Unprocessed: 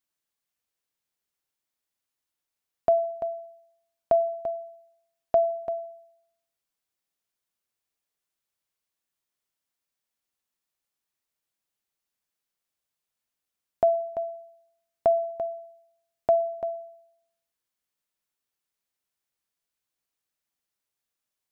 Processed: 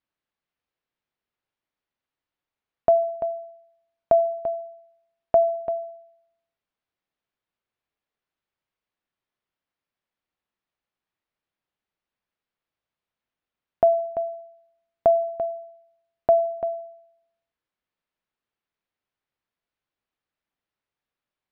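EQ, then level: distance through air 280 m; +4.5 dB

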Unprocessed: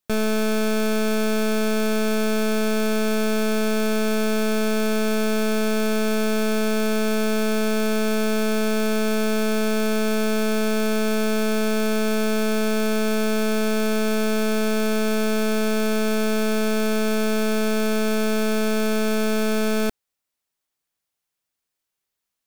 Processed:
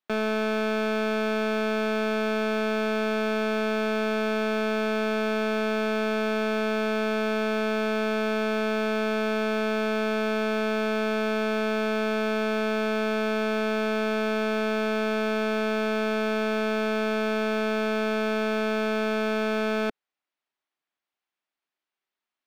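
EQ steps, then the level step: three-band isolator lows -18 dB, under 230 Hz, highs -15 dB, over 4.1 kHz; peaking EQ 490 Hz -8 dB 0.25 oct; treble shelf 6.2 kHz -6 dB; 0.0 dB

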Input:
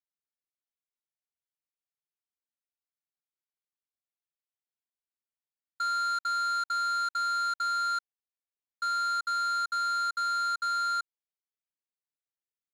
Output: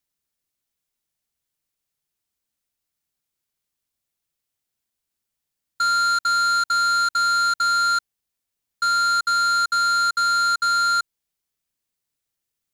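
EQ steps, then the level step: bass shelf 270 Hz +11 dB; treble shelf 2.8 kHz +7 dB; +7.5 dB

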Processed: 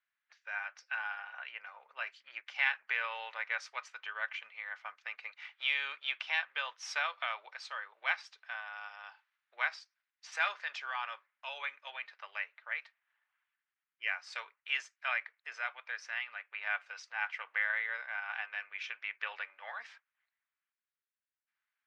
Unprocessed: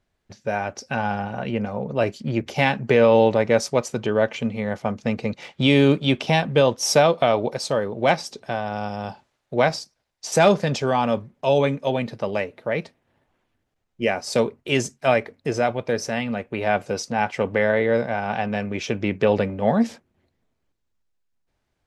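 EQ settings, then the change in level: high-pass 1.4 kHz 24 dB/octave; low-pass 2.1 kHz 12 dB/octave; -2.5 dB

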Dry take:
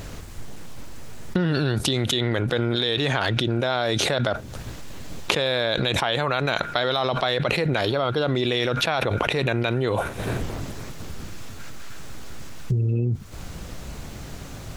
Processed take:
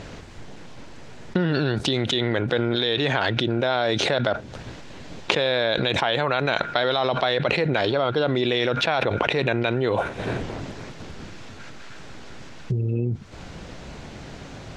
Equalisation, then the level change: distance through air 110 m; bass shelf 110 Hz -10.5 dB; peaking EQ 1.2 kHz -4 dB 0.24 oct; +2.5 dB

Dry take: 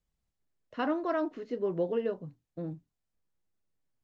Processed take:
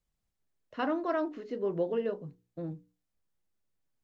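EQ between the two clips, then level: hum notches 60/120/180/240/300/360/420/480 Hz; 0.0 dB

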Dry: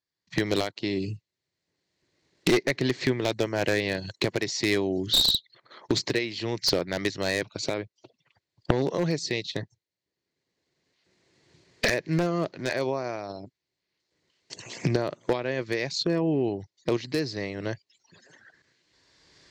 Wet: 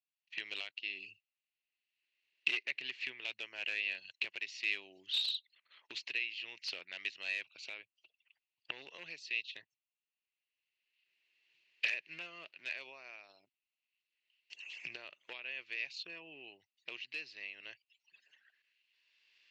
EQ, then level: band-pass filter 2.7 kHz, Q 9.3; +4.0 dB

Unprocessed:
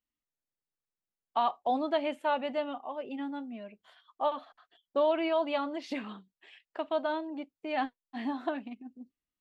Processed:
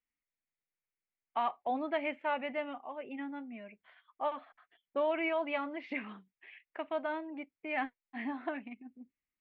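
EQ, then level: resonant low-pass 2.2 kHz, resonance Q 4.3; bass shelf 400 Hz +3 dB; -6.5 dB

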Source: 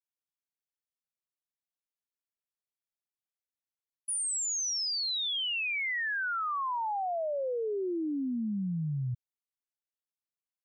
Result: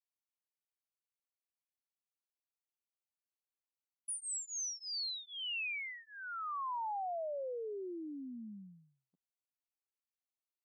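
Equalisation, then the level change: boxcar filter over 25 samples; brick-wall FIR high-pass 180 Hz; differentiator; +16.0 dB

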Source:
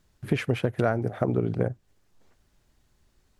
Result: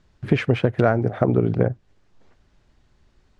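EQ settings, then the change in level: distance through air 110 m; +6.5 dB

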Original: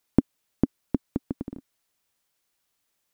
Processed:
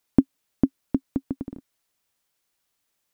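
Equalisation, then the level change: dynamic bell 270 Hz, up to +6 dB, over -37 dBFS, Q 5; 0.0 dB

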